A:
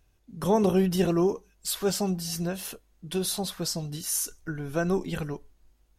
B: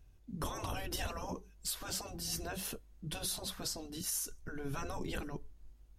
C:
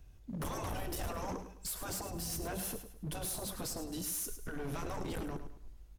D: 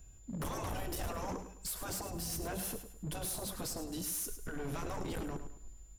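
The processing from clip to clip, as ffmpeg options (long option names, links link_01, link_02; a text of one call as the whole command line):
ffmpeg -i in.wav -af "afftfilt=real='re*lt(hypot(re,im),0.126)':imag='im*lt(hypot(re,im),0.126)':win_size=1024:overlap=0.75,alimiter=limit=-22dB:level=0:latency=1:release=480,lowshelf=frequency=240:gain=10,volume=-4dB" out.wav
ffmpeg -i in.wav -filter_complex "[0:a]acrossover=split=330|1300|7000[link_01][link_02][link_03][link_04];[link_03]acompressor=threshold=-53dB:ratio=6[link_05];[link_01][link_02][link_05][link_04]amix=inputs=4:normalize=0,asoftclip=type=hard:threshold=-40dB,aecho=1:1:105|210|315|420:0.299|0.102|0.0345|0.0117,volume=4.5dB" out.wav
ffmpeg -i in.wav -af "aeval=exprs='val(0)+0.000794*sin(2*PI*7100*n/s)':channel_layout=same" out.wav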